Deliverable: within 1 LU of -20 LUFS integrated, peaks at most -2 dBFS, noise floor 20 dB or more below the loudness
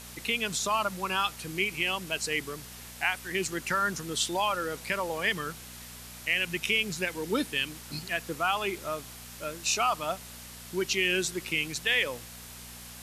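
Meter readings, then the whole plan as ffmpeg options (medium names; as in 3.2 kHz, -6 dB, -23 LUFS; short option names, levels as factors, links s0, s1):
hum 60 Hz; highest harmonic 240 Hz; hum level -48 dBFS; noise floor -46 dBFS; noise floor target -50 dBFS; loudness -29.5 LUFS; peak level -12.5 dBFS; loudness target -20.0 LUFS
-> -af "bandreject=f=60:t=h:w=4,bandreject=f=120:t=h:w=4,bandreject=f=180:t=h:w=4,bandreject=f=240:t=h:w=4"
-af "afftdn=nr=6:nf=-46"
-af "volume=2.99"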